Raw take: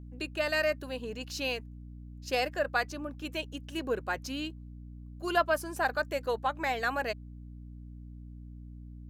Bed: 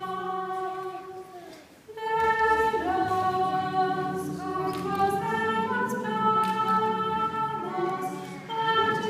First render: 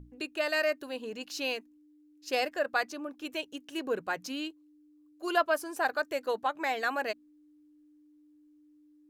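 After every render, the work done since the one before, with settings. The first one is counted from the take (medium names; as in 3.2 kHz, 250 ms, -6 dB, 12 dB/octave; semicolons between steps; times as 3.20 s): hum notches 60/120/180/240 Hz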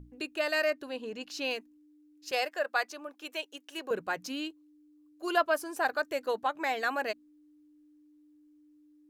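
0.70–1.51 s: treble shelf 9.7 kHz -10.5 dB; 2.31–3.91 s: high-pass 470 Hz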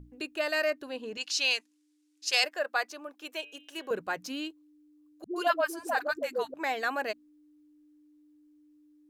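1.17–2.44 s: frequency weighting ITU-R 468; 3.32–3.89 s: de-hum 147.9 Hz, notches 27; 5.24–6.54 s: phase dispersion highs, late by 120 ms, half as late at 350 Hz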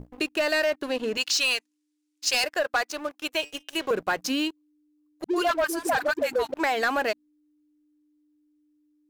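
waveshaping leveller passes 3; compression 4:1, threshold -22 dBFS, peak gain reduction 6 dB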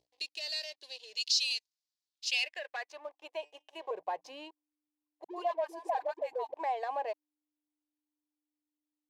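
band-pass sweep 4.5 kHz -> 960 Hz, 2.03–3.14 s; static phaser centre 560 Hz, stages 4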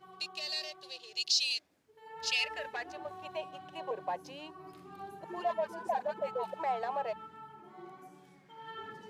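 add bed -21.5 dB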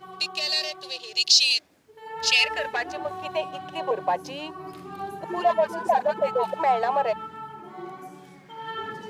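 trim +11.5 dB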